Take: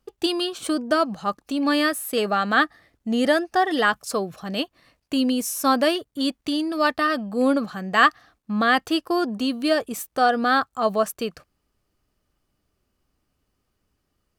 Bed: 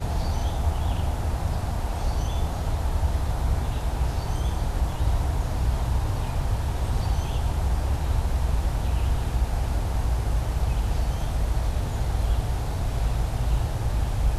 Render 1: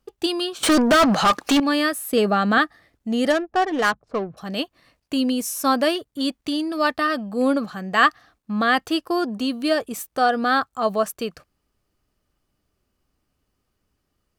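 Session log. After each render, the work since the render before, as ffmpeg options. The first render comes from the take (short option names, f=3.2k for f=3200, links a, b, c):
-filter_complex "[0:a]asettb=1/sr,asplit=3[a][b][c];[a]atrim=end=0.634[d];[b]atrim=start=0.63:end=1.6,asetpts=PTS-STARTPTS,afade=t=in:d=0.004:c=qsin,afade=t=out:st=0.966:d=0.004:c=qsin,asplit=2[e][f];[f]highpass=f=720:p=1,volume=32dB,asoftclip=type=tanh:threshold=-8.5dB[g];[e][g]amix=inputs=2:normalize=0,lowpass=f=4.2k:p=1,volume=-6dB[h];[c]atrim=start=1.596[i];[d][h]acrossfade=d=0.004:c1=hsin:c2=qsin[j];[j][i]acrossfade=d=0.004:c1=qsin:c2=hsin,asettb=1/sr,asplit=3[k][l][m];[k]atrim=end=2.114[n];[l]atrim=start=2.11:end=2.58,asetpts=PTS-STARTPTS,afade=t=in:d=0.004:c=qsin,afade=t=out:st=0.466:d=0.004:c=qsin,lowshelf=f=410:g=9[o];[m]atrim=start=2.576[p];[n][o]acrossfade=d=0.004:c1=hsin:c2=qsin[q];[q][p]acrossfade=d=0.004:c1=qsin:c2=hsin,asettb=1/sr,asplit=3[r][s][t];[r]atrim=end=3.304[u];[s]atrim=start=3.3:end=4.37,asetpts=PTS-STARTPTS,afade=t=in:d=0.004:c=qsin,afade=t=out:st=1.066:d=0.004:c=qsin,adynamicsmooth=sensitivity=1.5:basefreq=570[v];[t]atrim=start=4.366[w];[u][v]acrossfade=d=0.004:c1=hsin:c2=qsin[x];[x][w]acrossfade=d=0.004:c1=qsin:c2=hsin"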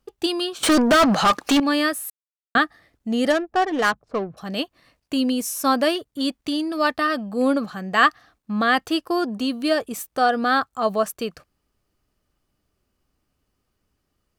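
-filter_complex "[0:a]asplit=3[a][b][c];[a]atrim=end=2.1,asetpts=PTS-STARTPTS,afade=t=out:st=2.096:d=0.004:c=hsin[d];[b]atrim=start=2.1:end=2.55,asetpts=PTS-STARTPTS,volume=0[e];[c]atrim=start=2.55,asetpts=PTS-STARTPTS,afade=t=in:d=0.004:c=hsin[f];[d][e][f]concat=n=3:v=0:a=1"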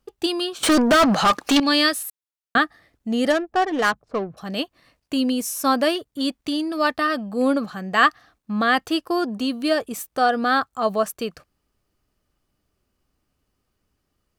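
-filter_complex "[0:a]asettb=1/sr,asplit=3[a][b][c];[a]atrim=end=1.564[d];[b]atrim=start=1.56:end=2.03,asetpts=PTS-STARTPTS,afade=t=in:d=0.004:c=qsin,afade=t=out:st=0.466:d=0.004:c=qsin,equalizer=f=4.4k:w=0.87:g=10[e];[c]atrim=start=2.026[f];[d][e]acrossfade=d=0.004:c1=hsin:c2=qsin[g];[g][f]acrossfade=d=0.004:c1=qsin:c2=hsin"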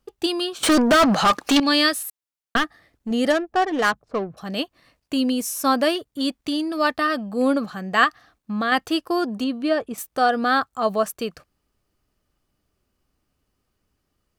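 -filter_complex "[0:a]asettb=1/sr,asplit=3[a][b][c];[a]atrim=end=2.564[d];[b]atrim=start=2.56:end=3.11,asetpts=PTS-STARTPTS,afade=t=in:d=0.004:c=qsin,afade=t=out:st=0.546:d=0.004:c=qsin,aeval=exprs='clip(val(0),-1,0.0501)':c=same[e];[c]atrim=start=3.106[f];[d][e]acrossfade=d=0.004:c1=hsin:c2=qsin[g];[g][f]acrossfade=d=0.004:c1=qsin:c2=hsin,asettb=1/sr,asplit=3[h][i][j];[h]atrim=end=8.044[k];[i]atrim=start=8.04:end=8.72,asetpts=PTS-STARTPTS,afade=t=in:d=0.004:c=qsin,afade=t=out:st=0.676:d=0.004:c=qsin,acompressor=threshold=-25dB:ratio=1.5:attack=3.2:release=140:knee=1:detection=peak[l];[j]atrim=start=8.716[m];[k][l]acrossfade=d=0.004:c1=hsin:c2=qsin[n];[n][m]acrossfade=d=0.004:c1=qsin:c2=hsin,asettb=1/sr,asplit=3[o][p][q];[o]atrim=end=9.444[r];[p]atrim=start=9.44:end=9.98,asetpts=PTS-STARTPTS,afade=t=in:d=0.004:c=qsin,afade=t=out:st=0.536:d=0.004:c=qsin,aemphasis=mode=reproduction:type=75kf[s];[q]atrim=start=9.976[t];[r][s]acrossfade=d=0.004:c1=hsin:c2=qsin[u];[u][t]acrossfade=d=0.004:c1=qsin:c2=hsin"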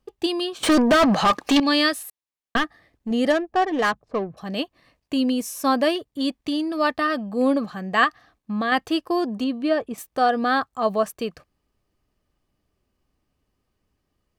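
-af "highshelf=f=4.7k:g=-6.5,bandreject=f=1.4k:w=8"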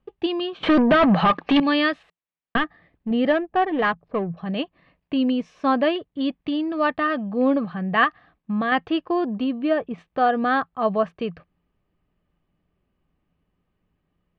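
-af "lowpass=f=3.2k:w=0.5412,lowpass=f=3.2k:w=1.3066,equalizer=f=170:w=5.6:g=11.5"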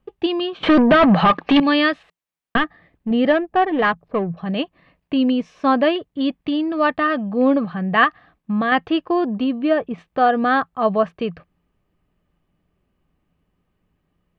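-af "volume=3.5dB"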